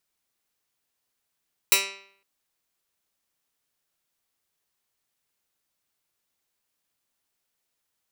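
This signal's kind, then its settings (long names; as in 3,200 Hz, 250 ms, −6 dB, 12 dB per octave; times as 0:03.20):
Karplus-Strong string G3, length 0.51 s, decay 0.63 s, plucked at 0.12, medium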